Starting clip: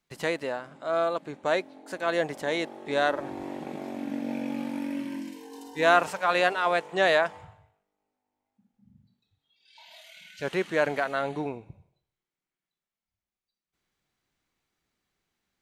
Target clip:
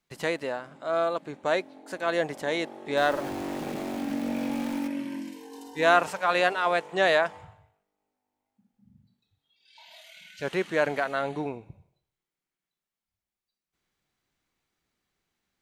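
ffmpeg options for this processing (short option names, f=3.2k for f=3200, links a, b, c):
-filter_complex "[0:a]asettb=1/sr,asplit=3[a][b][c];[a]atrim=end=2.974[d];[b]atrim=start=2.97:end=4.88,asetpts=PTS-STARTPTS,afade=t=in:d=0.004:c=qsin,afade=t=out:st=1.906:d=0.004:c=qsin,aeval=exprs='val(0)+0.5*0.0178*sgn(val(0))':c=same[e];[c]atrim=start=4.876[f];[d][e]acrossfade=d=0.004:c1=hsin:c2=qsin[g];[g][f]acrossfade=d=0.004:c1=qsin:c2=hsin"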